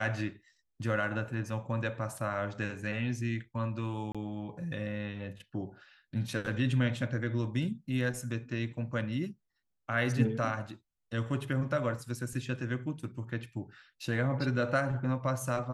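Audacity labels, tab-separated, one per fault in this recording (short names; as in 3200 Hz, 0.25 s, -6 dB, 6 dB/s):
4.120000	4.150000	gap 26 ms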